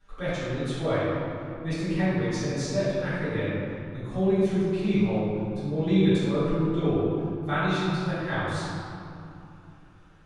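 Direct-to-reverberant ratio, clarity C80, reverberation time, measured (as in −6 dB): −17.5 dB, −2.0 dB, 2.8 s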